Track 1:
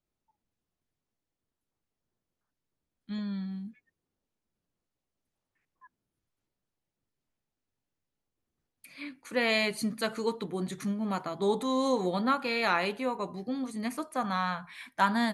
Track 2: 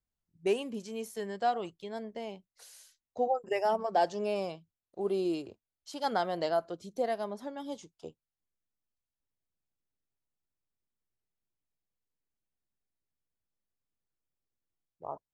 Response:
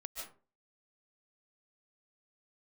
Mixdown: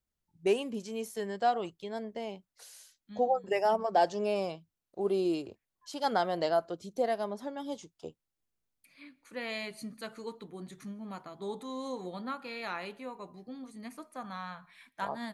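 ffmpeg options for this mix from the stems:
-filter_complex "[0:a]volume=-11dB,asplit=2[link_01][link_02];[link_02]volume=-22dB[link_03];[1:a]volume=1.5dB,asplit=2[link_04][link_05];[link_05]apad=whole_len=676219[link_06];[link_01][link_06]sidechaincompress=threshold=-39dB:ratio=8:attack=8.5:release=158[link_07];[2:a]atrim=start_sample=2205[link_08];[link_03][link_08]afir=irnorm=-1:irlink=0[link_09];[link_07][link_04][link_09]amix=inputs=3:normalize=0"

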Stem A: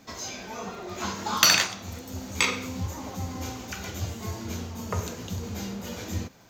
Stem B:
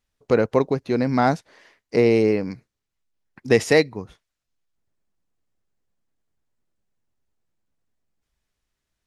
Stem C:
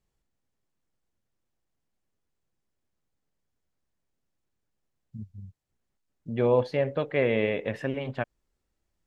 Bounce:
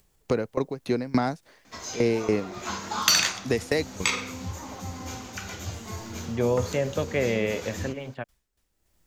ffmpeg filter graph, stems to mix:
ffmpeg -i stem1.wav -i stem2.wav -i stem3.wav -filter_complex "[0:a]lowpass=10000,equalizer=frequency=1400:width=0.63:gain=4,adelay=1650,volume=-3.5dB[link_01];[1:a]dynaudnorm=framelen=200:gausssize=11:maxgain=8.5dB,aeval=exprs='val(0)*pow(10,-25*if(lt(mod(3.5*n/s,1),2*abs(3.5)/1000),1-mod(3.5*n/s,1)/(2*abs(3.5)/1000),(mod(3.5*n/s,1)-2*abs(3.5)/1000)/(1-2*abs(3.5)/1000))/20)':channel_layout=same,volume=2.5dB[link_02];[2:a]acompressor=mode=upward:threshold=-38dB:ratio=2.5,volume=-10dB[link_03];[link_02][link_03]amix=inputs=2:normalize=0,dynaudnorm=framelen=420:gausssize=9:maxgain=12.5dB,alimiter=limit=-11dB:level=0:latency=1:release=85,volume=0dB[link_04];[link_01][link_04]amix=inputs=2:normalize=0,highshelf=frequency=7800:gain=9,acrossover=split=360|3000[link_05][link_06][link_07];[link_06]acompressor=threshold=-24dB:ratio=6[link_08];[link_05][link_08][link_07]amix=inputs=3:normalize=0" out.wav

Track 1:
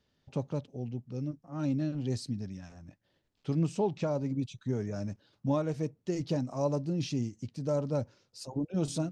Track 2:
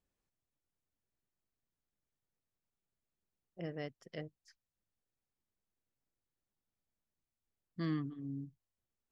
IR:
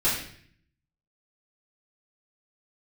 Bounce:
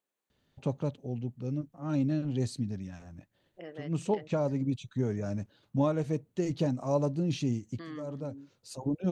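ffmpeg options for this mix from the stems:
-filter_complex "[0:a]adelay=300,volume=2dB[link_01];[1:a]highpass=340,alimiter=level_in=12dB:limit=-24dB:level=0:latency=1:release=125,volume=-12dB,volume=2dB,asplit=2[link_02][link_03];[link_03]apad=whole_len=415361[link_04];[link_01][link_04]sidechaincompress=threshold=-56dB:ratio=12:attack=41:release=112[link_05];[link_05][link_02]amix=inputs=2:normalize=0,equalizer=frequency=5200:width=5:gain=-9"

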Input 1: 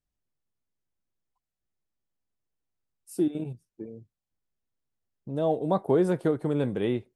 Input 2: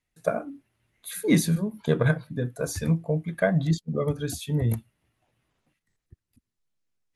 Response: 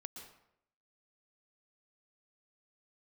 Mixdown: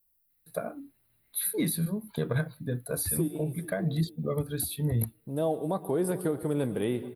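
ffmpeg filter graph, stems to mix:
-filter_complex "[0:a]volume=-3.5dB,asplit=3[link_01][link_02][link_03];[link_02]volume=-3.5dB[link_04];[link_03]volume=-20dB[link_05];[1:a]equalizer=frequency=4000:width_type=o:width=0.2:gain=13,alimiter=limit=-14dB:level=0:latency=1:release=238,bass=frequency=250:gain=1,treble=frequency=4000:gain=-10,adelay=300,volume=-4dB[link_06];[2:a]atrim=start_sample=2205[link_07];[link_04][link_07]afir=irnorm=-1:irlink=0[link_08];[link_05]aecho=0:1:439|878|1317|1756|2195|2634|3073|3512|3951:1|0.57|0.325|0.185|0.106|0.0602|0.0343|0.0195|0.0111[link_09];[link_01][link_06][link_08][link_09]amix=inputs=4:normalize=0,equalizer=frequency=4700:width_type=o:width=0.26:gain=6.5,aexciter=amount=15.2:drive=6.7:freq=9600,alimiter=limit=-18dB:level=0:latency=1:release=336"

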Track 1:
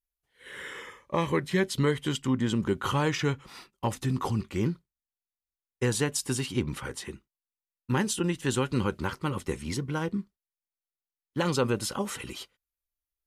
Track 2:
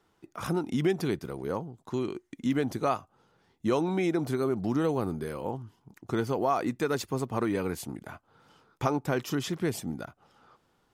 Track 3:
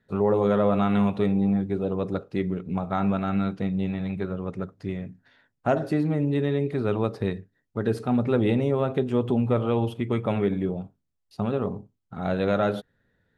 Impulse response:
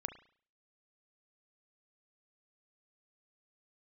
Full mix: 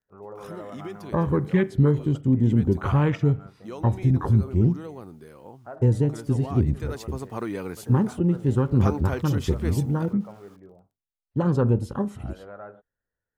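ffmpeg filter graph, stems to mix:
-filter_complex "[0:a]lowshelf=frequency=270:gain=9,afwtdn=0.0282,equalizer=frequency=73:width_type=o:width=1.4:gain=8,volume=-3.5dB,asplit=2[link_01][link_02];[link_02]volume=-5.5dB[link_03];[1:a]acrusher=bits=9:mix=0:aa=0.000001,volume=-2dB,afade=type=in:start_time=6.73:duration=0.65:silence=0.354813[link_04];[2:a]lowpass=frequency=1600:width=0.5412,lowpass=frequency=1600:width=1.3066,equalizer=frequency=180:width_type=o:width=2.4:gain=-12.5,volume=-13dB[link_05];[3:a]atrim=start_sample=2205[link_06];[link_03][link_06]afir=irnorm=-1:irlink=0[link_07];[link_01][link_04][link_05][link_07]amix=inputs=4:normalize=0"

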